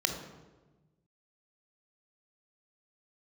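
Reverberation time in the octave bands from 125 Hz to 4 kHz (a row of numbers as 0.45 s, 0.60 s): 1.8 s, 1.5 s, 1.3 s, 1.1 s, 0.90 s, 0.75 s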